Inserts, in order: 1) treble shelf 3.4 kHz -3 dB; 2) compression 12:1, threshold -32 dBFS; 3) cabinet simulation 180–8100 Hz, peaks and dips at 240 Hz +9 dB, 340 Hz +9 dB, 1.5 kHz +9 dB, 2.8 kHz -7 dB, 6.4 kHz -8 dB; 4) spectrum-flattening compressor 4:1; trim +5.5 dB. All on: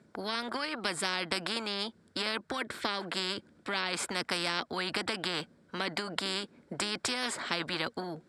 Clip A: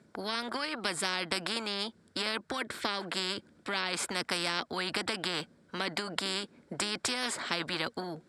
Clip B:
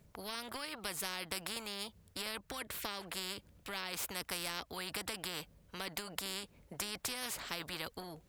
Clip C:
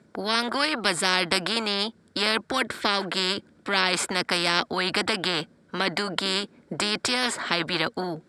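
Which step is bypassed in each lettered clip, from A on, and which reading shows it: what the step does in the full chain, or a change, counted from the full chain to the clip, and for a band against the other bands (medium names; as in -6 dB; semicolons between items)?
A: 1, 8 kHz band +2.0 dB; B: 3, crest factor change +3.0 dB; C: 2, mean gain reduction 4.0 dB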